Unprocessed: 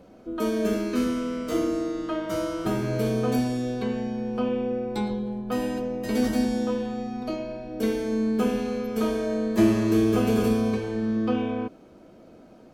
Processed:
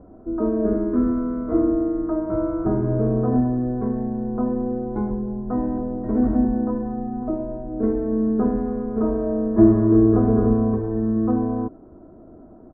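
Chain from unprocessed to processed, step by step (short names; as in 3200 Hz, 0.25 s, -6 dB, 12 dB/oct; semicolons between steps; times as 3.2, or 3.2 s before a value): inverse Chebyshev low-pass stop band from 2700 Hz, stop band 40 dB; low shelf 250 Hz +10.5 dB; comb 2.9 ms, depth 44%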